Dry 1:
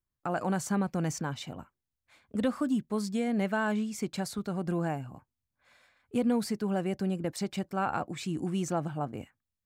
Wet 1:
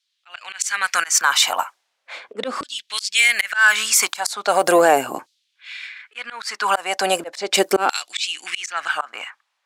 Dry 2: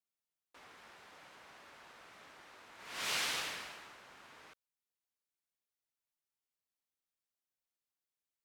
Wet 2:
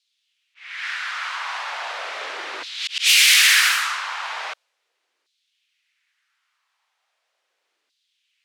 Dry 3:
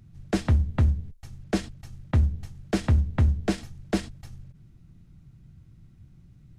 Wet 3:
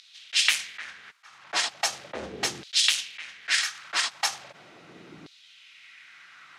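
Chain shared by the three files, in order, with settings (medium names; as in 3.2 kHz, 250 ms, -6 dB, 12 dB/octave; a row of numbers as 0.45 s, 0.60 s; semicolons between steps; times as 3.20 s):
LFO high-pass saw down 0.38 Hz 320–4100 Hz; in parallel at -6 dB: saturation -24.5 dBFS; on the sum: tilt EQ +3.5 dB/octave; slow attack 322 ms; level-controlled noise filter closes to 2.5 kHz, open at -33.5 dBFS; loudness maximiser +23.5 dB; trim -3.5 dB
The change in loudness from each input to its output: +13.0 LU, +19.5 LU, +1.0 LU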